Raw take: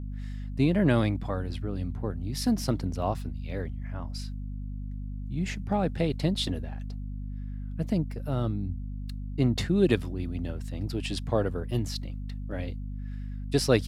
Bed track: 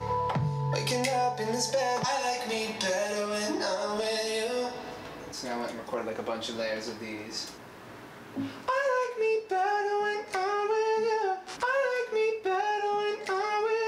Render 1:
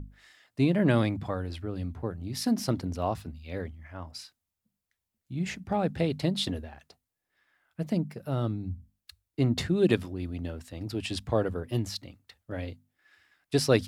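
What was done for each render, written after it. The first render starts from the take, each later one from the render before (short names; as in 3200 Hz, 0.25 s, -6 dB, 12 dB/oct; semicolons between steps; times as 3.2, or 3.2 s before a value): notches 50/100/150/200/250 Hz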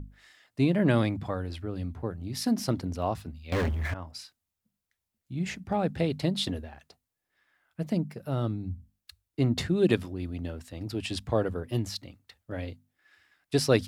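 3.52–3.94 sample leveller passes 5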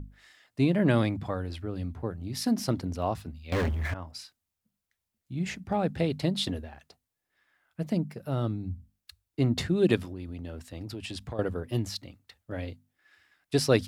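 10.04–11.39 compressor 4:1, threshold -34 dBFS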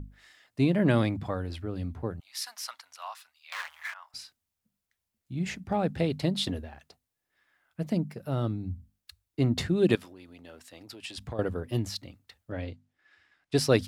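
2.2–4.14 inverse Chebyshev high-pass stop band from 390 Hz, stop band 50 dB; 9.95–11.18 HPF 780 Hz 6 dB/oct; 12.51–13.55 air absorption 65 m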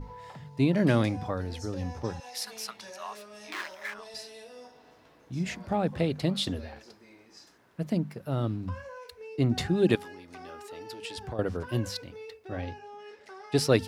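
add bed track -17 dB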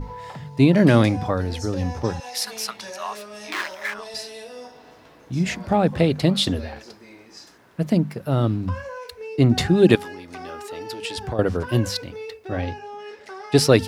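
gain +9 dB; limiter -2 dBFS, peak gain reduction 2 dB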